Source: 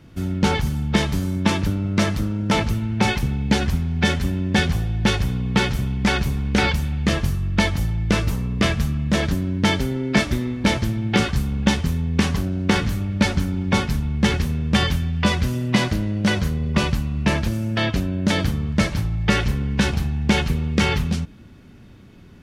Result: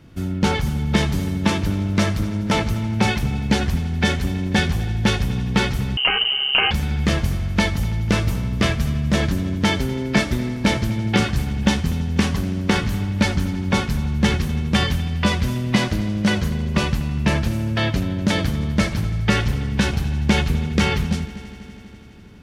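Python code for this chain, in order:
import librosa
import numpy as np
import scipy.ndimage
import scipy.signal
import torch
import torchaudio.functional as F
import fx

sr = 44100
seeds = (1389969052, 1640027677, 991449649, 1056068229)

y = fx.echo_heads(x, sr, ms=82, heads='first and third', feedback_pct=73, wet_db=-19.0)
y = fx.freq_invert(y, sr, carrier_hz=3000, at=(5.97, 6.71))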